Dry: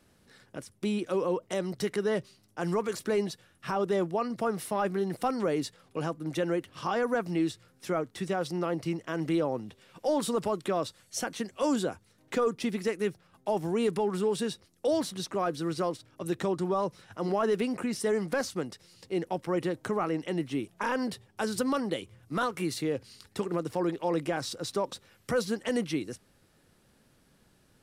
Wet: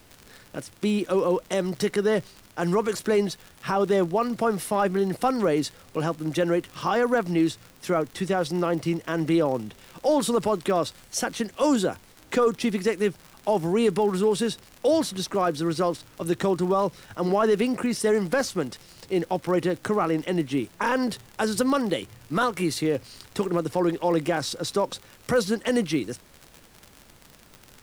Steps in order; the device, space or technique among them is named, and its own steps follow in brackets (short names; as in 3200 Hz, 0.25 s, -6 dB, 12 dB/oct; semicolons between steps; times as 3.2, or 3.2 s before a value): vinyl LP (crackle 68/s -38 dBFS; pink noise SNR 30 dB); gain +6 dB